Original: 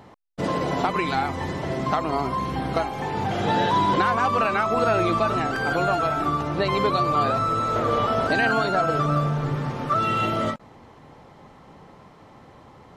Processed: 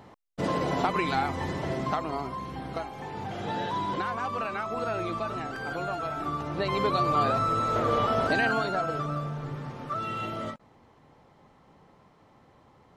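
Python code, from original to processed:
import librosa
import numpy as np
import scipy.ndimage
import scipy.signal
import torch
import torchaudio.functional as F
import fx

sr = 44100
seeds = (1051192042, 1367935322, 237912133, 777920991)

y = fx.gain(x, sr, db=fx.line((1.68, -3.0), (2.4, -10.0), (5.96, -10.0), (7.08, -3.0), (8.28, -3.0), (9.19, -10.0)))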